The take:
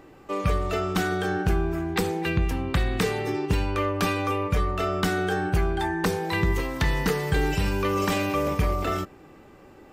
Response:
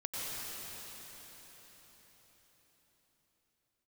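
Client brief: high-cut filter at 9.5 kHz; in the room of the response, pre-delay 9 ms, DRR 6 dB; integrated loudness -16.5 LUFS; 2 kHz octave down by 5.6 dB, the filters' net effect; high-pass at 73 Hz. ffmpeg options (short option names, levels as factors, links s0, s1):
-filter_complex "[0:a]highpass=73,lowpass=9500,equalizer=f=2000:t=o:g=-7.5,asplit=2[s0][s1];[1:a]atrim=start_sample=2205,adelay=9[s2];[s1][s2]afir=irnorm=-1:irlink=0,volume=0.316[s3];[s0][s3]amix=inputs=2:normalize=0,volume=3.35"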